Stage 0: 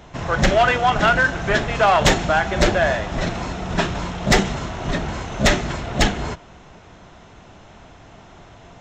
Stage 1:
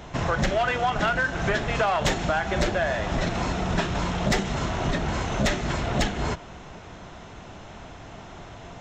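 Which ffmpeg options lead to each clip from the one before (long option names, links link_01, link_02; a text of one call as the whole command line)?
ffmpeg -i in.wav -af "acompressor=threshold=-24dB:ratio=6,volume=2.5dB" out.wav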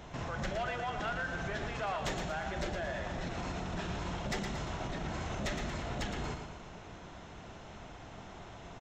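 ffmpeg -i in.wav -af "alimiter=limit=-23dB:level=0:latency=1:release=69,aecho=1:1:115|230|345|460|575:0.447|0.201|0.0905|0.0407|0.0183,volume=-7.5dB" out.wav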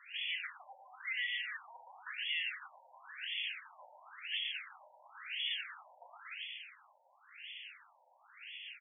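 ffmpeg -i in.wav -filter_complex "[0:a]asplit=2[link_01][link_02];[link_02]highpass=frequency=720:poles=1,volume=11dB,asoftclip=type=tanh:threshold=-26dB[link_03];[link_01][link_03]amix=inputs=2:normalize=0,lowpass=frequency=1100:poles=1,volume=-6dB,lowpass=frequency=3000:width_type=q:width=0.5098,lowpass=frequency=3000:width_type=q:width=0.6013,lowpass=frequency=3000:width_type=q:width=0.9,lowpass=frequency=3000:width_type=q:width=2.563,afreqshift=-3500,afftfilt=real='re*between(b*sr/1024,680*pow(2600/680,0.5+0.5*sin(2*PI*0.96*pts/sr))/1.41,680*pow(2600/680,0.5+0.5*sin(2*PI*0.96*pts/sr))*1.41)':imag='im*between(b*sr/1024,680*pow(2600/680,0.5+0.5*sin(2*PI*0.96*pts/sr))/1.41,680*pow(2600/680,0.5+0.5*sin(2*PI*0.96*pts/sr))*1.41)':win_size=1024:overlap=0.75,volume=1dB" out.wav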